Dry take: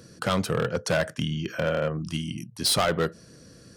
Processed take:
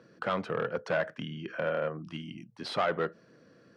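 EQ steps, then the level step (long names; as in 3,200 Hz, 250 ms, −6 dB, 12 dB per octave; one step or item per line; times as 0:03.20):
high-pass filter 130 Hz 12 dB per octave
low-pass filter 2,100 Hz 12 dB per octave
low-shelf EQ 240 Hz −10.5 dB
−2.5 dB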